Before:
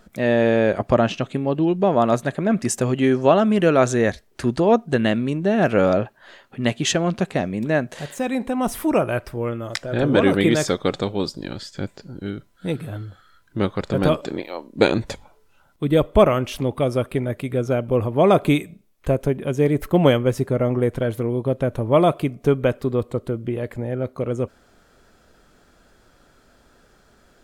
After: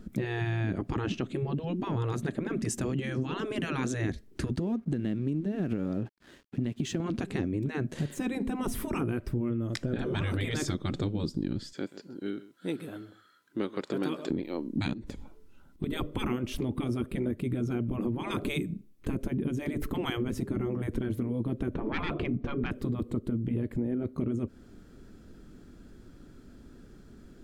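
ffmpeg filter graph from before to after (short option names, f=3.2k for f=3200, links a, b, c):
-filter_complex "[0:a]asettb=1/sr,asplit=3[a][b][c];[a]atrim=end=4.524[d];[b]atrim=start=4.52:end=7,asetpts=PTS-STARTPTS,afade=t=in:d=0.004:c=qsin,afade=t=out:st=2.476:d=0.004:c=qsin,highpass=43,acompressor=threshold=-24dB:ratio=6:attack=3.2:release=140:knee=1:detection=peak,aeval=exprs='sgn(val(0))*max(abs(val(0))-0.00355,0)':c=same[e];[c]atrim=start=6.996[f];[d][e]acrossfade=d=0.004:c1=hsin:c2=qsin[g];[g][f]acrossfade=d=0.004:c1=qsin:c2=hsin,asettb=1/sr,asplit=3[h][i][j];[h]atrim=end=11.734[k];[i]atrim=start=11.73:end=14.3,asetpts=PTS-STARTPTS,afade=t=in:d=0.004:c=qsin,afade=t=out:st=2.566:d=0.004:c=qsin,highpass=550,aecho=1:1:130:0.133,atrim=end_sample=113337[l];[j]atrim=start=14.296[m];[k][l]acrossfade=d=0.004:c1=hsin:c2=qsin[n];[n][m]acrossfade=d=0.004:c1=qsin:c2=hsin,asettb=1/sr,asplit=3[o][p][q];[o]atrim=end=14.934[r];[p]atrim=start=14.93:end=15.84,asetpts=PTS-STARTPTS,afade=t=in:d=0.004:c=qsin,afade=t=out:st=0.906:d=0.004:c=qsin,equalizer=f=120:w=1.8:g=-8,acompressor=threshold=-37dB:ratio=5:attack=3.2:release=140:knee=1:detection=peak,aeval=exprs='clip(val(0),-1,0.015)':c=same[s];[q]atrim=start=15.836[t];[r][s]acrossfade=d=0.004:c1=hsin:c2=qsin[u];[u][t]acrossfade=d=0.004:c1=qsin:c2=hsin,asettb=1/sr,asplit=3[v][w][x];[v]atrim=end=21.744[y];[w]atrim=start=21.74:end=22.71,asetpts=PTS-STARTPTS,afade=t=in:d=0.004:c=qsin,afade=t=out:st=0.966:d=0.004:c=qsin,lowpass=2.6k,acontrast=88[z];[x]atrim=start=22.706[aa];[y][z]acrossfade=d=0.004:c1=hsin:c2=qsin[ab];[ab][aa]acrossfade=d=0.004:c1=qsin:c2=hsin,afftfilt=real='re*lt(hypot(re,im),0.398)':imag='im*lt(hypot(re,im),0.398)':win_size=1024:overlap=0.75,lowshelf=f=440:t=q:w=1.5:g=12.5,acompressor=threshold=-21dB:ratio=6,volume=-6dB"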